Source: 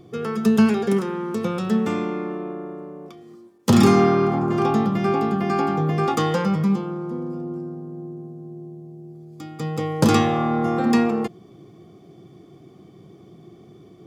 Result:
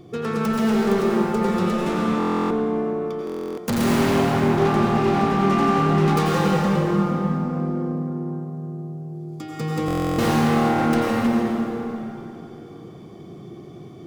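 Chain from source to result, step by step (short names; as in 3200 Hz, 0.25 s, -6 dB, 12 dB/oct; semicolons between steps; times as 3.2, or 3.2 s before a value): self-modulated delay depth 0.44 ms; in parallel at -1.5 dB: compressor, threshold -28 dBFS, peak gain reduction 16 dB; on the sum: hard clip -17 dBFS, distortion -9 dB; plate-style reverb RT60 3.3 s, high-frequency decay 0.65×, pre-delay 75 ms, DRR -3 dB; stuck buffer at 2.18/3.25/9.86, samples 1024, times 13; gain -3 dB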